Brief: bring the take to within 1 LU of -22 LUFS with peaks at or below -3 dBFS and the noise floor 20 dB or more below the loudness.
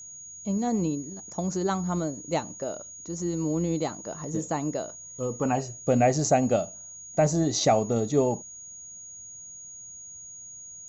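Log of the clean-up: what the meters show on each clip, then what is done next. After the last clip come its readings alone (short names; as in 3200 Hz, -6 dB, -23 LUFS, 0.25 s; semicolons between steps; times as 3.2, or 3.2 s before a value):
steady tone 6700 Hz; tone level -41 dBFS; loudness -27.5 LUFS; peak -10.0 dBFS; loudness target -22.0 LUFS
-> notch 6700 Hz, Q 30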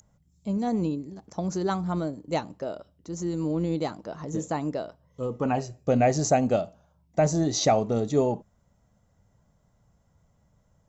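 steady tone none; loudness -27.5 LUFS; peak -10.0 dBFS; loudness target -22.0 LUFS
-> gain +5.5 dB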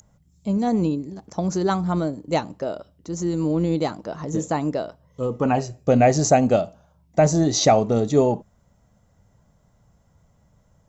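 loudness -22.0 LUFS; peak -4.5 dBFS; noise floor -61 dBFS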